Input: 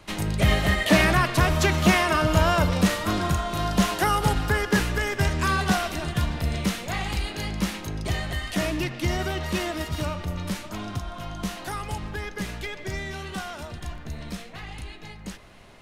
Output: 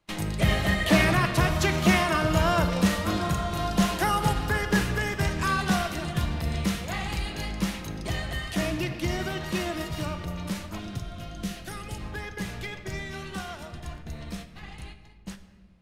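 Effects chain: gate -37 dBFS, range -20 dB; 10.79–12.01 s: peaking EQ 950 Hz -12.5 dB 0.67 oct; simulated room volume 2200 m³, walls mixed, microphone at 0.75 m; trim -3 dB

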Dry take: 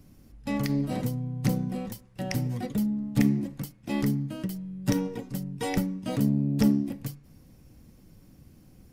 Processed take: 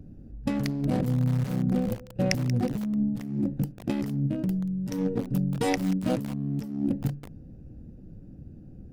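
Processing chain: local Wiener filter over 41 samples; compressor with a negative ratio -32 dBFS, ratio -1; 1.87–2.31 s: small resonant body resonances 510/2500 Hz, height 14 dB, ringing for 80 ms; bit-crushed delay 183 ms, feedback 55%, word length 5-bit, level -13.5 dB; trim +5 dB

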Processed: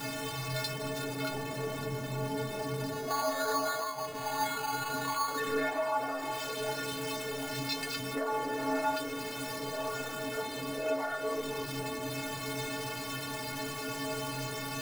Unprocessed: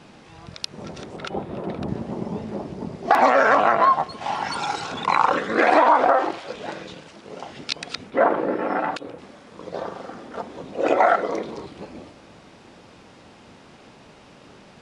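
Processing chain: jump at every zero crossing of -20.5 dBFS; compression 5:1, threshold -18 dBFS, peak gain reduction 7.5 dB; inharmonic resonator 130 Hz, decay 0.58 s, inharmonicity 0.03; 2.92–5.40 s: careless resampling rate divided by 8×, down filtered, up hold; trim +2.5 dB

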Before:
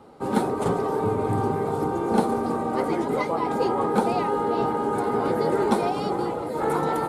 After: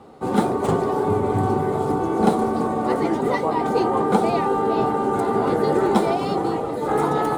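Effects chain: median filter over 3 samples; speed mistake 25 fps video run at 24 fps; trim +3.5 dB

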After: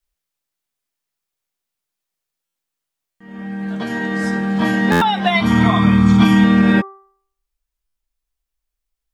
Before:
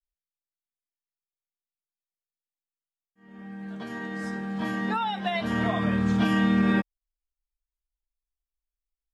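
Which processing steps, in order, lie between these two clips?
5.30–6.44 s: comb 0.9 ms, depth 67%; in parallel at -1 dB: gain riding within 4 dB; on the sum: de-hum 389.7 Hz, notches 5; buffer glitch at 2.45/3.10/4.91/7.86 s, samples 512; trim +5.5 dB

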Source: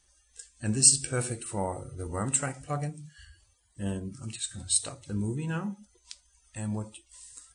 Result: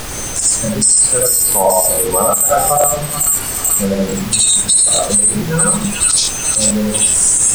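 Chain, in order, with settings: treble shelf 9.1 kHz +8 dB; feedback echo behind a high-pass 435 ms, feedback 46%, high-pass 2.1 kHz, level -7.5 dB; spectral gate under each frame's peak -15 dB strong; reverberation RT60 0.35 s, pre-delay 45 ms, DRR -5 dB; compression 6:1, threshold -32 dBFS, peak gain reduction 22.5 dB; high-pass 160 Hz 24 dB/octave; bass shelf 250 Hz -12 dB; static phaser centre 740 Hz, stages 4; added noise pink -59 dBFS; loudness maximiser +34 dB; crackling interface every 0.43 s, samples 1024, repeat, from 0.64 s; 1.22–4.07 s: decimation joined by straight lines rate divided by 2×; trim -1 dB

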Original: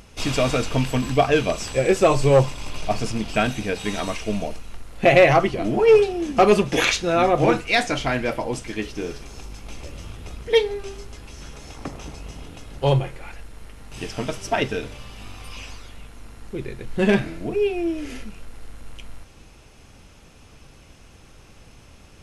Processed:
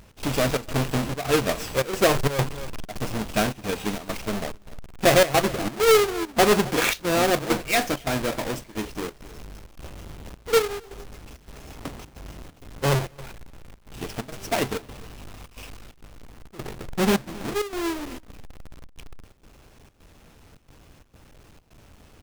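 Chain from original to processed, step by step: square wave that keeps the level; on a send: delay 266 ms -20 dB; on the sum: trance gate "x.xxx.xxxx.xxxx" 132 bpm -12 dB; bass shelf 130 Hz -4 dB; trim -6 dB

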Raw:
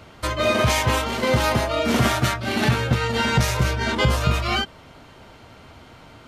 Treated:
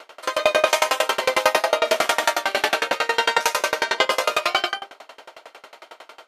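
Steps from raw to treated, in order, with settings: high-pass 450 Hz 24 dB/octave; in parallel at 0 dB: peak limiter -17.5 dBFS, peak gain reduction 9 dB; on the sum: algorithmic reverb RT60 0.5 s, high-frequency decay 0.5×, pre-delay 60 ms, DRR 2.5 dB; sawtooth tremolo in dB decaying 11 Hz, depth 28 dB; trim +4.5 dB

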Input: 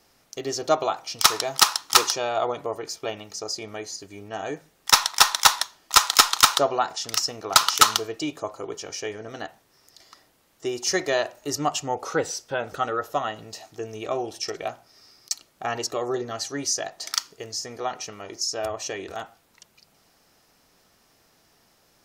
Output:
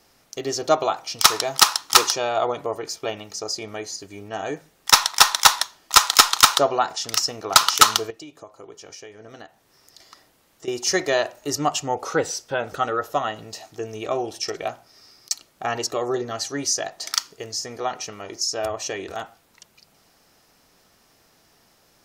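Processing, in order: 8.10–10.68 s: compression 8:1, threshold -41 dBFS, peak gain reduction 16.5 dB; trim +2.5 dB

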